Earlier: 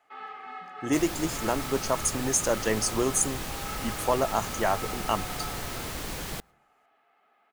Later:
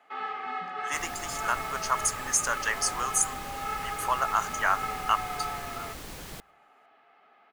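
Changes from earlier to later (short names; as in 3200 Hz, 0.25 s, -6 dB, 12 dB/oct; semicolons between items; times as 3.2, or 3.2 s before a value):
speech: add resonant high-pass 1300 Hz, resonance Q 2.8; first sound +6.5 dB; second sound -6.5 dB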